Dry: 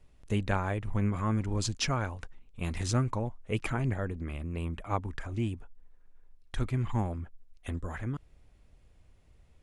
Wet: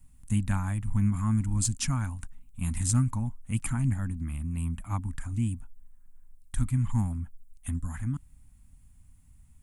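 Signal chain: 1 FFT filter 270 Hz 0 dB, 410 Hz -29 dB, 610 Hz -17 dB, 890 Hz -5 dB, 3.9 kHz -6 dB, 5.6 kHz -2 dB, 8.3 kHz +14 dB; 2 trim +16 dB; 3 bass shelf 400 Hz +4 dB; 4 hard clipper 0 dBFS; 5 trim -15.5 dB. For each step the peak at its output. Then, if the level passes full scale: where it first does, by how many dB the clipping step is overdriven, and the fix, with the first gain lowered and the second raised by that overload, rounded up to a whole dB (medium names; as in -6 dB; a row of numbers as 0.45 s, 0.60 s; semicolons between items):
-13.5 dBFS, +2.5 dBFS, +3.0 dBFS, 0.0 dBFS, -15.5 dBFS; step 2, 3.0 dB; step 2 +13 dB, step 5 -12.5 dB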